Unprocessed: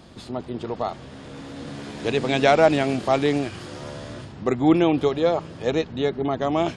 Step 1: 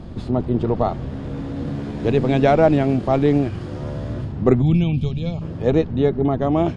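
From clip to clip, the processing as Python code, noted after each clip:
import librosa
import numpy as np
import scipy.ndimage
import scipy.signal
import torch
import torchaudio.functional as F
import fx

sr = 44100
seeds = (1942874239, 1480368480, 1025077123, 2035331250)

y = fx.spec_box(x, sr, start_s=4.61, length_s=0.81, low_hz=250.0, high_hz=2200.0, gain_db=-18)
y = fx.tilt_eq(y, sr, slope=-3.5)
y = fx.rider(y, sr, range_db=4, speed_s=2.0)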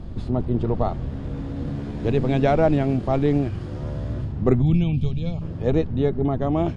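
y = fx.low_shelf(x, sr, hz=80.0, db=11.0)
y = y * librosa.db_to_amplitude(-4.5)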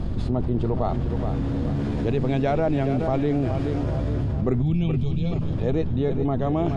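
y = fx.echo_feedback(x, sr, ms=423, feedback_pct=44, wet_db=-11.5)
y = fx.env_flatten(y, sr, amount_pct=70)
y = y * librosa.db_to_amplitude(-6.0)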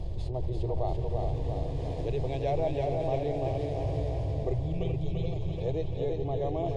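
y = fx.fixed_phaser(x, sr, hz=570.0, stages=4)
y = fx.echo_feedback(y, sr, ms=341, feedback_pct=57, wet_db=-4.0)
y = y * librosa.db_to_amplitude(-5.5)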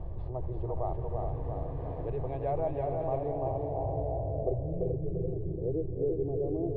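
y = fx.filter_sweep_lowpass(x, sr, from_hz=1300.0, to_hz=380.0, start_s=3.01, end_s=5.48, q=2.9)
y = y * librosa.db_to_amplitude(-4.0)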